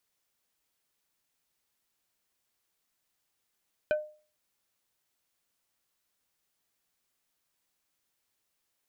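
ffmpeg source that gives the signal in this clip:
-f lavfi -i "aevalsrc='0.0891*pow(10,-3*t/0.39)*sin(2*PI*608*t)+0.0398*pow(10,-3*t/0.13)*sin(2*PI*1520*t)+0.0178*pow(10,-3*t/0.074)*sin(2*PI*2432*t)+0.00794*pow(10,-3*t/0.057)*sin(2*PI*3040*t)+0.00355*pow(10,-3*t/0.041)*sin(2*PI*3952*t)':d=0.45:s=44100"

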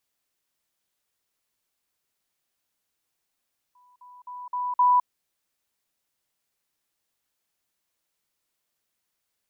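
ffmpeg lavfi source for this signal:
-f lavfi -i "aevalsrc='pow(10,(-55.5+10*floor(t/0.26))/20)*sin(2*PI*989*t)*clip(min(mod(t,0.26),0.21-mod(t,0.26))/0.005,0,1)':d=1.3:s=44100"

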